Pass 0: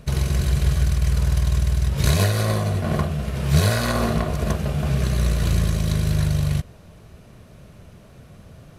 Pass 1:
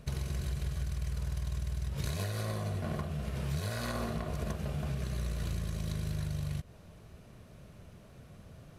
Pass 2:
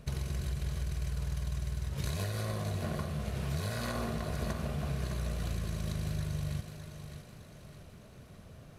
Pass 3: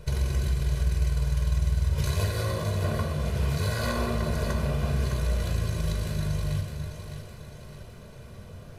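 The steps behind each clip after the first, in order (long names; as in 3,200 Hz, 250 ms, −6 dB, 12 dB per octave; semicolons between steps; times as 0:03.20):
downward compressor, threshold −24 dBFS, peak gain reduction 12 dB; level −7.5 dB
feedback echo with a high-pass in the loop 610 ms, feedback 50%, high-pass 170 Hz, level −7.5 dB
convolution reverb RT60 0.80 s, pre-delay 4 ms, DRR 4.5 dB; level +3 dB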